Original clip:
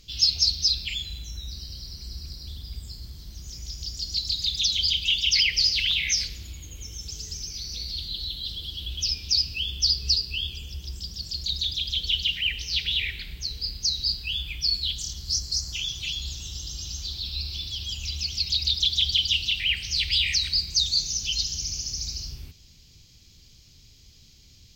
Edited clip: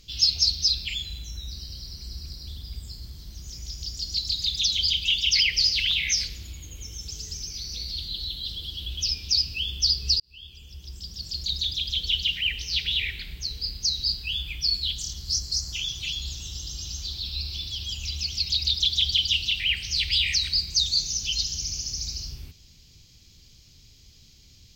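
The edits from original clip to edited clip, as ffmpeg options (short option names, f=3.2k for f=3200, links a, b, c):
-filter_complex "[0:a]asplit=2[a][b];[a]atrim=end=10.2,asetpts=PTS-STARTPTS,afade=t=out:st=10.196:d=0.004:c=hsin[c];[b]atrim=start=10.2,asetpts=PTS-STARTPTS,afade=t=in:d=1.18[d];[c][d]concat=n=2:v=0:a=1"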